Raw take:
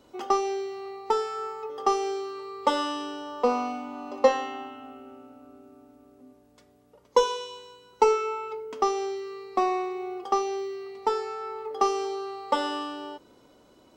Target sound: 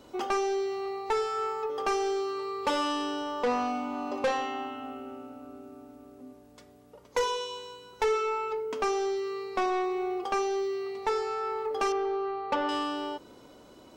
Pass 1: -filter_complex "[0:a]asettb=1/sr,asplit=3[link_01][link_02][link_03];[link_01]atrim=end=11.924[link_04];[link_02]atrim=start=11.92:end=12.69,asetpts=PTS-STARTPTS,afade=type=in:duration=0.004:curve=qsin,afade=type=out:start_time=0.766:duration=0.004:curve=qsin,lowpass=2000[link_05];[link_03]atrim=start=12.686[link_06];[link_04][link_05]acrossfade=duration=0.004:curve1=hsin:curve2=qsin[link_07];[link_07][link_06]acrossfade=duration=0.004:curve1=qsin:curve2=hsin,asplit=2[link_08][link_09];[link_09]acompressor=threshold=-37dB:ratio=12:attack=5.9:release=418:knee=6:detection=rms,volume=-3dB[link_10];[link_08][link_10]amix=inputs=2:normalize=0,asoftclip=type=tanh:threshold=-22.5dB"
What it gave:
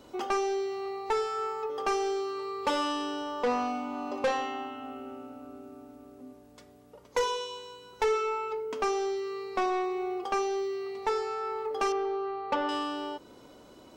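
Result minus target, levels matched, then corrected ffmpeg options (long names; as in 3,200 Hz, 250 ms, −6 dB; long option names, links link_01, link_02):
downward compressor: peak gain reduction +8.5 dB
-filter_complex "[0:a]asettb=1/sr,asplit=3[link_01][link_02][link_03];[link_01]atrim=end=11.924[link_04];[link_02]atrim=start=11.92:end=12.69,asetpts=PTS-STARTPTS,afade=type=in:duration=0.004:curve=qsin,afade=type=out:start_time=0.766:duration=0.004:curve=qsin,lowpass=2000[link_05];[link_03]atrim=start=12.686[link_06];[link_04][link_05]acrossfade=duration=0.004:curve1=hsin:curve2=qsin[link_07];[link_07][link_06]acrossfade=duration=0.004:curve1=qsin:curve2=hsin,asplit=2[link_08][link_09];[link_09]acompressor=threshold=-28dB:ratio=12:attack=5.9:release=418:knee=6:detection=rms,volume=-3dB[link_10];[link_08][link_10]amix=inputs=2:normalize=0,asoftclip=type=tanh:threshold=-22.5dB"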